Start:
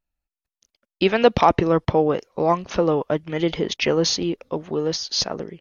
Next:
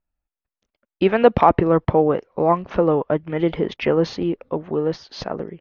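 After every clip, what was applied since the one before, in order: LPF 1900 Hz 12 dB/oct; gain +2 dB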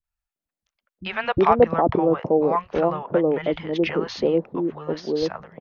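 low shelf 140 Hz -7 dB; three bands offset in time lows, highs, mids 40/360 ms, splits 150/750 Hz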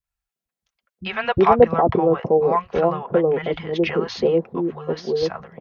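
notch comb 300 Hz; gain +3 dB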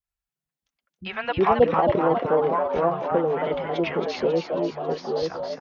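frequency-shifting echo 0.272 s, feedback 55%, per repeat +110 Hz, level -5.5 dB; gain -5 dB

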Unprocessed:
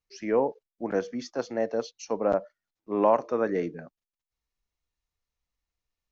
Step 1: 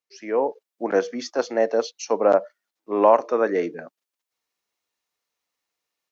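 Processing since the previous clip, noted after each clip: AGC gain up to 8.5 dB; HPF 320 Hz 12 dB/oct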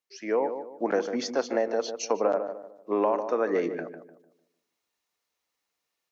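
compressor 10:1, threshold -21 dBFS, peak gain reduction 12 dB; darkening echo 0.15 s, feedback 37%, low-pass 1300 Hz, level -8 dB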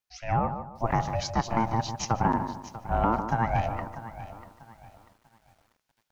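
ring modulator 340 Hz; lo-fi delay 0.642 s, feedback 35%, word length 9-bit, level -14.5 dB; gain +3 dB

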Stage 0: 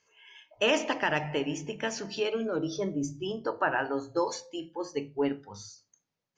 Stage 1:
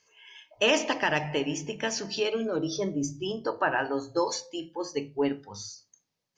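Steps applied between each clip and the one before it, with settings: bell 5000 Hz +5.5 dB 1 oct; notch 1400 Hz, Q 16; gain +1.5 dB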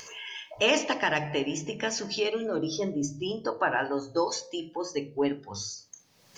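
wow and flutter 23 cents; de-hum 76.78 Hz, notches 9; upward compressor, threshold -29 dBFS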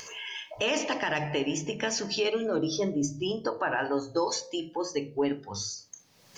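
limiter -19 dBFS, peak gain reduction 8 dB; gain +1.5 dB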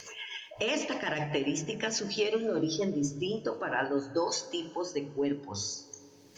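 rotary speaker horn 8 Hz, later 0.8 Hz, at 3.13; plate-style reverb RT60 4.6 s, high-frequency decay 0.5×, DRR 17.5 dB

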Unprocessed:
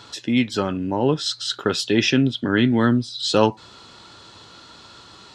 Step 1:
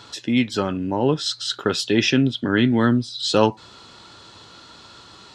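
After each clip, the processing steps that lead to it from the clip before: nothing audible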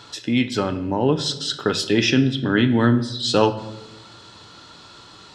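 shoebox room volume 410 m³, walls mixed, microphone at 0.42 m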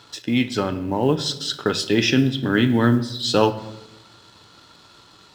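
G.711 law mismatch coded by A

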